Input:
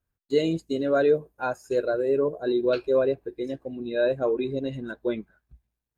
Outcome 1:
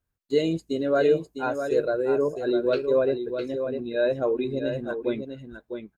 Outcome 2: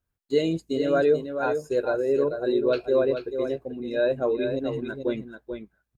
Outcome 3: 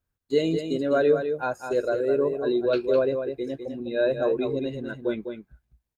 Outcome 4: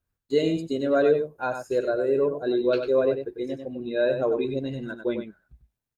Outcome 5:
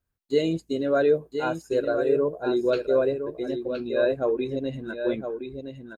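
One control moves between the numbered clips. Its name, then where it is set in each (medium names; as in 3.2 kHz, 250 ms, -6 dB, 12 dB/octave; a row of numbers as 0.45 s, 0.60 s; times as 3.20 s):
delay, time: 655 ms, 437 ms, 204 ms, 96 ms, 1017 ms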